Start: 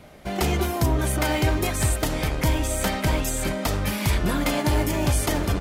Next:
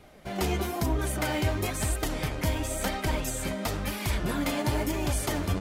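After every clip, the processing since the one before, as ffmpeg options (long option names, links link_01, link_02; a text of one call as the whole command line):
ffmpeg -i in.wav -af "flanger=delay=2.4:depth=8.8:regen=39:speed=1:shape=sinusoidal,volume=-1.5dB" out.wav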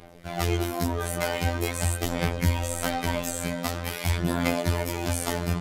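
ffmpeg -i in.wav -af "aphaser=in_gain=1:out_gain=1:delay=5:decay=0.39:speed=0.45:type=sinusoidal,afftfilt=real='hypot(re,im)*cos(PI*b)':imag='0':win_size=2048:overlap=0.75,volume=4.5dB" out.wav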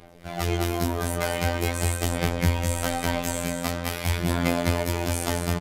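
ffmpeg -i in.wav -af "aecho=1:1:209:0.473,volume=-1dB" out.wav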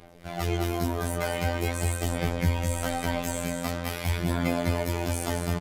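ffmpeg -i in.wav -af "acontrast=51,volume=-7.5dB" out.wav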